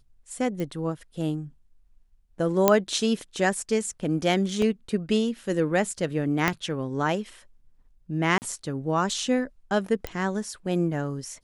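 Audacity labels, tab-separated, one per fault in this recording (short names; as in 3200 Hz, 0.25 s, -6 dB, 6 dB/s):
0.600000	0.600000	pop -20 dBFS
2.680000	2.680000	pop -3 dBFS
4.620000	4.620000	gap 2.4 ms
6.480000	6.480000	pop -7 dBFS
8.380000	8.420000	gap 39 ms
10.070000	10.070000	pop -15 dBFS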